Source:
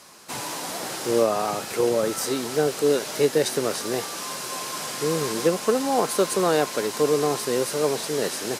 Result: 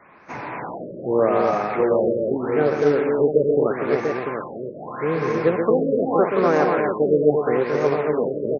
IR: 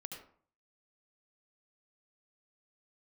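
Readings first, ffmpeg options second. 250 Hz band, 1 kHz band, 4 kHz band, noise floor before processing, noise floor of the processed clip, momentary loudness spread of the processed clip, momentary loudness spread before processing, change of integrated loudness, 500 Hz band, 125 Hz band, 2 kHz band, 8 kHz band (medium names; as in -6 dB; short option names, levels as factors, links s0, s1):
+4.5 dB, +3.0 dB, under -15 dB, -34 dBFS, -36 dBFS, 13 LU, 8 LU, +3.5 dB, +4.5 dB, +4.5 dB, +2.0 dB, under -25 dB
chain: -af "asuperstop=centerf=4400:order=12:qfactor=0.86,aemphasis=mode=production:type=50kf,aecho=1:1:130|244|693:0.473|0.631|0.501,acrusher=bits=5:mode=log:mix=0:aa=0.000001,afftfilt=real='re*lt(b*sr/1024,610*pow(6600/610,0.5+0.5*sin(2*PI*0.8*pts/sr)))':imag='im*lt(b*sr/1024,610*pow(6600/610,0.5+0.5*sin(2*PI*0.8*pts/sr)))':win_size=1024:overlap=0.75,volume=1.19"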